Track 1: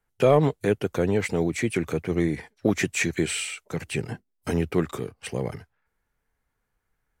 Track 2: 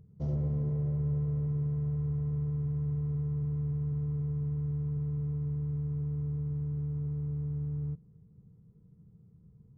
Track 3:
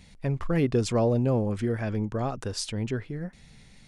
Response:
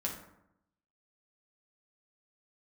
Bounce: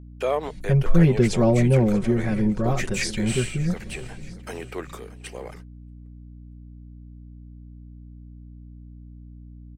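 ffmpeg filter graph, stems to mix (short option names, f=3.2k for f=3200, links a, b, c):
-filter_complex "[0:a]highpass=490,volume=-3dB,asplit=2[a][b];[b]volume=-18dB[c];[2:a]lowshelf=f=210:g=11,aecho=1:1:5.4:0.98,adelay=450,volume=-1dB,asplit=2[d][e];[e]volume=-19.5dB[f];[c][f]amix=inputs=2:normalize=0,aecho=0:1:631|1262|1893|2524|3155|3786|4417:1|0.5|0.25|0.125|0.0625|0.0312|0.0156[g];[a][d][g]amix=inputs=3:normalize=0,agate=range=-34dB:threshold=-46dB:ratio=16:detection=peak,aeval=exprs='val(0)+0.00891*(sin(2*PI*60*n/s)+sin(2*PI*2*60*n/s)/2+sin(2*PI*3*60*n/s)/3+sin(2*PI*4*60*n/s)/4+sin(2*PI*5*60*n/s)/5)':c=same"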